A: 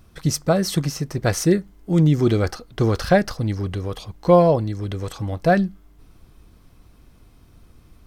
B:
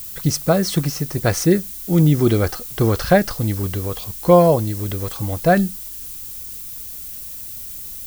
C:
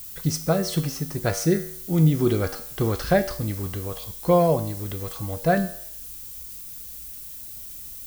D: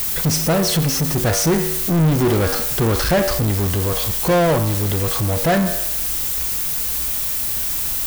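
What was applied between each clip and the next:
background noise violet −35 dBFS; level +2 dB
tuned comb filter 53 Hz, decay 0.65 s, harmonics odd, mix 70%; level +2.5 dB
power curve on the samples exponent 0.35; level −2.5 dB

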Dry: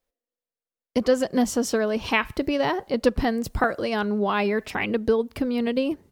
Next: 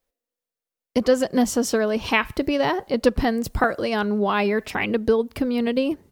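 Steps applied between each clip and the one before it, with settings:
high-shelf EQ 11,000 Hz +3 dB
level +2 dB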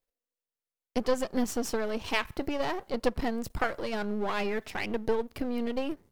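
gain on one half-wave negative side −12 dB
level −5.5 dB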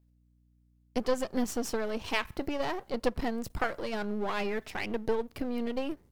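mains hum 60 Hz, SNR 33 dB
level −1.5 dB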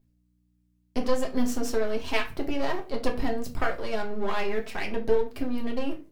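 convolution reverb RT60 0.30 s, pre-delay 3 ms, DRR 0.5 dB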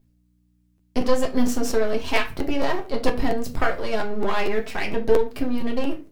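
regular buffer underruns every 0.23 s, samples 512, repeat, from 0:00.77
level +5 dB

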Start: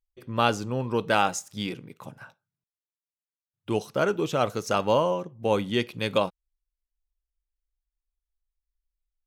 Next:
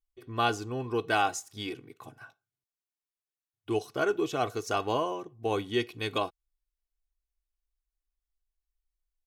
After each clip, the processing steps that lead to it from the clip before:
comb filter 2.7 ms, depth 74%
level −5.5 dB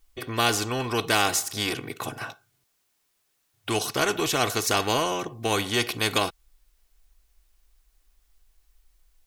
every bin compressed towards the loudest bin 2 to 1
level +8 dB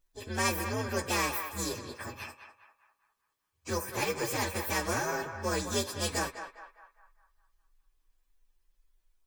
partials spread apart or drawn together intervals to 129%
feedback echo with a band-pass in the loop 203 ms, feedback 49%, band-pass 1,200 Hz, level −7 dB
level −3 dB

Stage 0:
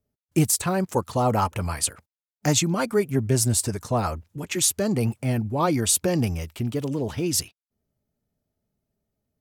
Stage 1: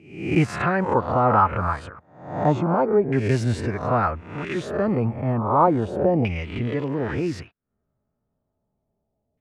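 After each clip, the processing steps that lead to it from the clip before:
peak hold with a rise ahead of every peak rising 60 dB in 0.62 s
auto-filter low-pass saw down 0.32 Hz 730–2,500 Hz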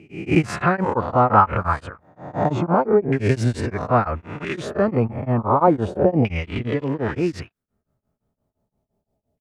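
tremolo along a rectified sine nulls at 5.8 Hz
level +5 dB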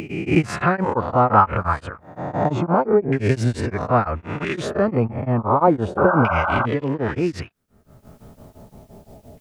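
upward compression, threshold −19 dBFS
sound drawn into the spectrogram noise, 0:05.97–0:06.66, 540–1,600 Hz −21 dBFS

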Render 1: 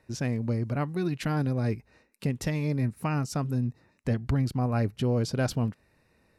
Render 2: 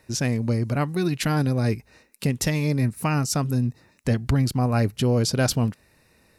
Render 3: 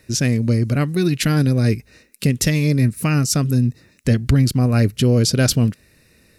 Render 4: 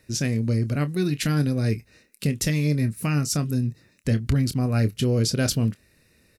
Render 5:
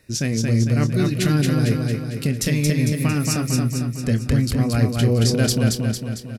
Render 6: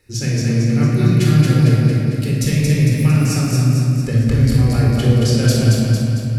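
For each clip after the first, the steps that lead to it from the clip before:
high-shelf EQ 3,700 Hz +10 dB; level +5 dB
parametric band 880 Hz −12.5 dB 0.87 octaves; level +6.5 dB
double-tracking delay 27 ms −12 dB; level −6.5 dB
repeating echo 226 ms, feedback 54%, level −3 dB; level +2 dB
rectangular room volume 2,100 cubic metres, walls mixed, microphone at 4.1 metres; level −4.5 dB

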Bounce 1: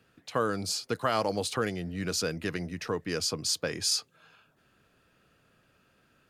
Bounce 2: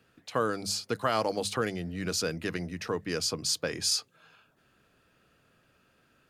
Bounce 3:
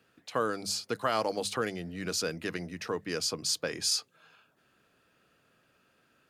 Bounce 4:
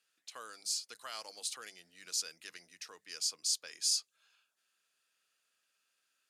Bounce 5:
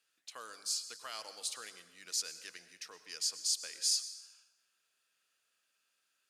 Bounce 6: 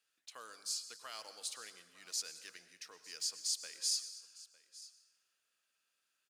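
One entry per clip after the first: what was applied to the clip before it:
mains-hum notches 50/100/150/200 Hz
low-shelf EQ 100 Hz −11 dB; level −1 dB
resonant band-pass 7,900 Hz, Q 0.89
dense smooth reverb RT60 0.96 s, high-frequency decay 0.9×, pre-delay 90 ms, DRR 12 dB
one scale factor per block 7 bits; single-tap delay 905 ms −19 dB; level −3.5 dB

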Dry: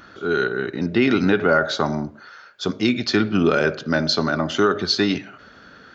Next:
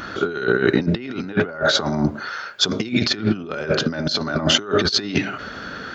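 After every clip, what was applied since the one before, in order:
in parallel at +0.5 dB: brickwall limiter −13.5 dBFS, peak gain reduction 7 dB
on the sum: compressor whose output falls as the input rises −21 dBFS, ratio −0.5
level +1 dB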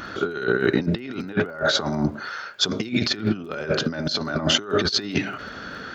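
surface crackle 19 per second −38 dBFS
level −3 dB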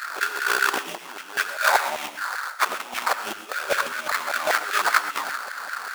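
sample-rate reduction 3,000 Hz, jitter 20%
auto-filter high-pass saw down 5.1 Hz 690–1,800 Hz
reverb whose tail is shaped and stops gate 150 ms rising, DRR 10.5 dB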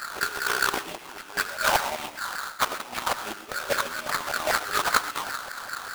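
each half-wave held at its own peak
level −7.5 dB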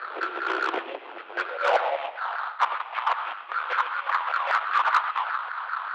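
single-sideband voice off tune −63 Hz 360–3,300 Hz
soft clipping −18 dBFS, distortion −13 dB
high-pass filter sweep 410 Hz → 1,000 Hz, 0:01.22–0:02.84

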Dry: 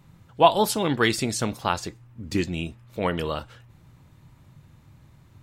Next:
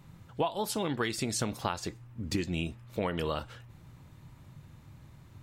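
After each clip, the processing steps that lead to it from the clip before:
downward compressor 12 to 1, threshold −27 dBFS, peak gain reduction 17.5 dB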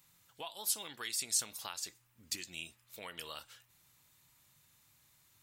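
first-order pre-emphasis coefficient 0.97
level +3.5 dB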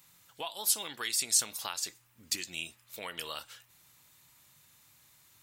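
low-shelf EQ 140 Hz −5.5 dB
level +6 dB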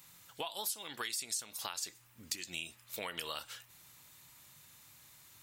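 downward compressor 6 to 1, threshold −39 dBFS, peak gain reduction 16.5 dB
level +3 dB

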